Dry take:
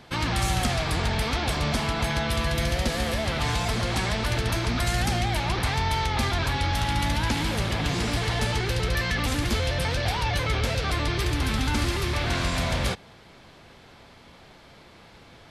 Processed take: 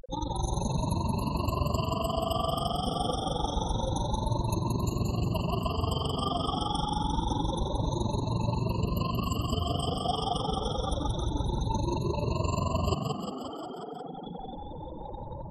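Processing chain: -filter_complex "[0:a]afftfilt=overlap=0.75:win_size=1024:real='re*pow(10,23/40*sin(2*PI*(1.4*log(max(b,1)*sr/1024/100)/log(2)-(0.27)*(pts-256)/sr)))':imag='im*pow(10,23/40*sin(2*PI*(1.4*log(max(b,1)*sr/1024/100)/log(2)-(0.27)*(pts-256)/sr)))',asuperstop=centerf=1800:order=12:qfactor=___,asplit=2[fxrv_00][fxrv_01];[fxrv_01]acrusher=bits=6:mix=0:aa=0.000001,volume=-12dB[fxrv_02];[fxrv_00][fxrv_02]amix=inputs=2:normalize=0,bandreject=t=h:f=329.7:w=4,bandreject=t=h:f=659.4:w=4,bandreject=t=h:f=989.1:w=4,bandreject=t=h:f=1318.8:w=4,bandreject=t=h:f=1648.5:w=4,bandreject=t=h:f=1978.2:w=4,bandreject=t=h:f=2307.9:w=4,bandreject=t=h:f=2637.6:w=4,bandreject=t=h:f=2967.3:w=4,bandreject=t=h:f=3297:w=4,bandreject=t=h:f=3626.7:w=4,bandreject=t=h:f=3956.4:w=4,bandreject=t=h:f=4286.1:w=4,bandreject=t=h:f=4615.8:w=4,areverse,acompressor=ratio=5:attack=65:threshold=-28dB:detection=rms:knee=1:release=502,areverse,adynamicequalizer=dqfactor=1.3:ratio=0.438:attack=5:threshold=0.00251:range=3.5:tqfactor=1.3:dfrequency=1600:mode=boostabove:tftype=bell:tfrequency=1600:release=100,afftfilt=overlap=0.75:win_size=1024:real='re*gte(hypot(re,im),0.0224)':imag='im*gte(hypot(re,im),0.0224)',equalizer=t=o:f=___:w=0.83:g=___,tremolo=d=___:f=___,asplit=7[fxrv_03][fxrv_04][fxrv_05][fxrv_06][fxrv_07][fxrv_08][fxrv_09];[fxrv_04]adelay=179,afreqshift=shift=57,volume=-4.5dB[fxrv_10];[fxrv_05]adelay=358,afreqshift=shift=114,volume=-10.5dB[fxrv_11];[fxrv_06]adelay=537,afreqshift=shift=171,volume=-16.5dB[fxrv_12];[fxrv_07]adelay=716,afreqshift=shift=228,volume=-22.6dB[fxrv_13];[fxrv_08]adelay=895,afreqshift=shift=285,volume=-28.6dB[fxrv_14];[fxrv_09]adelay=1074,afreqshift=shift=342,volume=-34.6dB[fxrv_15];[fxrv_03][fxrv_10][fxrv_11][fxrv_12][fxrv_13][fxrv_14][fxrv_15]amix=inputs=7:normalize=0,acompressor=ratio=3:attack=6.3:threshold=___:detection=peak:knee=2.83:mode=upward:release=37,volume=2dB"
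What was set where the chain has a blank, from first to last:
1.1, 4300, -9.5, 0.857, 23, -34dB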